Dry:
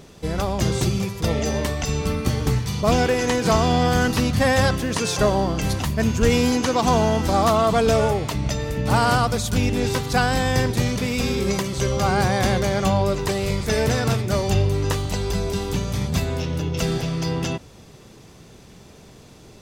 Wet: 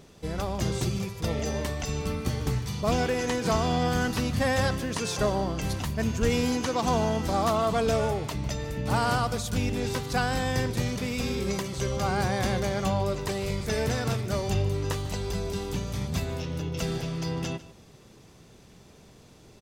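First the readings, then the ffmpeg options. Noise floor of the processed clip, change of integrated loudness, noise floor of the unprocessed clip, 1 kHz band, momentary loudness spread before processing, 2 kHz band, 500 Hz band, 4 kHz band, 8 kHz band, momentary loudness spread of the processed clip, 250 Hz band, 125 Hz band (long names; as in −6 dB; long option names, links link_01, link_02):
−53 dBFS, −7.0 dB, −46 dBFS, −7.0 dB, 7 LU, −7.0 dB, −7.0 dB, −7.0 dB, −7.0 dB, 7 LU, −7.0 dB, −7.0 dB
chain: -af "aecho=1:1:151:0.133,volume=-7dB"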